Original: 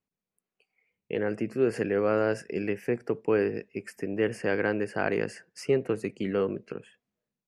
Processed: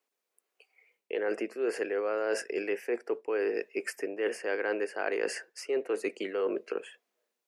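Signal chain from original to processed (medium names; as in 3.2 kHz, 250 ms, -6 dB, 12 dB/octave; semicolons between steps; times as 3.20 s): high-pass 370 Hz 24 dB/octave; reverse; compression 6:1, threshold -36 dBFS, peak gain reduction 13.5 dB; reverse; trim +8 dB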